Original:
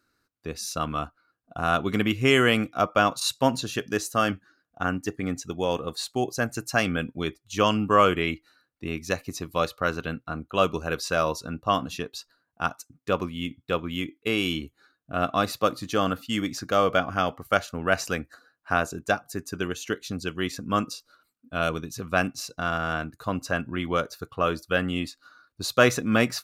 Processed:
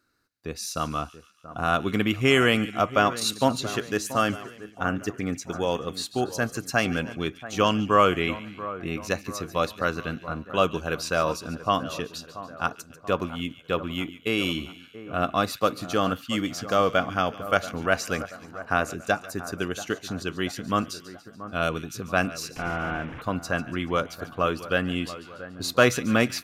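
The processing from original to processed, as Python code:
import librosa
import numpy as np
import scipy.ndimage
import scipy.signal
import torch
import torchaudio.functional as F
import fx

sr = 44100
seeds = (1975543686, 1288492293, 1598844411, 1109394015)

y = fx.delta_mod(x, sr, bps=16000, step_db=-32.5, at=(22.56, 23.22))
y = fx.echo_split(y, sr, split_hz=1800.0, low_ms=682, high_ms=143, feedback_pct=52, wet_db=-14.5)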